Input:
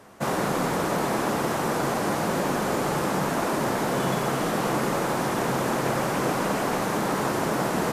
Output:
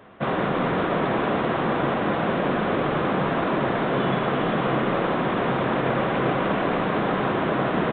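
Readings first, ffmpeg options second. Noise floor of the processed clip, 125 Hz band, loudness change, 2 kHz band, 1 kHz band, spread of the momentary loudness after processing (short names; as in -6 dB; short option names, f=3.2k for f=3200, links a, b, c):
-25 dBFS, +2.5 dB, +2.0 dB, +2.5 dB, +1.5 dB, 1 LU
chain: -af "bandreject=f=870:w=12,aecho=1:1:392:0.376,volume=2dB" -ar 8000 -c:a adpcm_g726 -b:a 40k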